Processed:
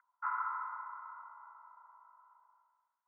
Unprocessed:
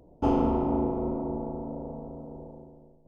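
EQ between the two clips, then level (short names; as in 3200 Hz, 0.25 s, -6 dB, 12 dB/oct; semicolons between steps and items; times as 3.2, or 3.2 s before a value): rippled Chebyshev high-pass 980 Hz, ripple 9 dB; rippled Chebyshev low-pass 2100 Hz, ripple 6 dB; +15.0 dB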